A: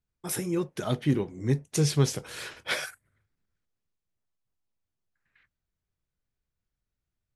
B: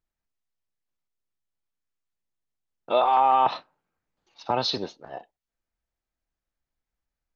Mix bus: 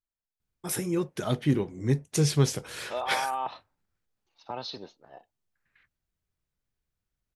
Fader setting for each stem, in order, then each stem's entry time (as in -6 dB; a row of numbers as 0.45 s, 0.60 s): +0.5 dB, -11.5 dB; 0.40 s, 0.00 s